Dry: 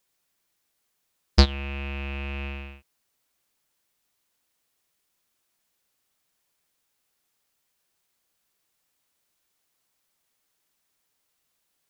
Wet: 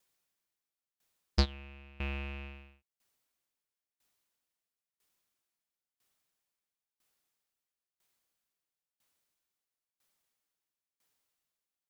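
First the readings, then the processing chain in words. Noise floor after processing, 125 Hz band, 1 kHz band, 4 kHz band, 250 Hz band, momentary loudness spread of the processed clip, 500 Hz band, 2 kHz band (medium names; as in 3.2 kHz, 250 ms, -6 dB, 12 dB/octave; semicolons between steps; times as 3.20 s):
under -85 dBFS, -10.5 dB, -10.5 dB, -11.0 dB, -10.5 dB, 18 LU, -10.5 dB, -9.5 dB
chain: sawtooth tremolo in dB decaying 1 Hz, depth 23 dB; trim -1.5 dB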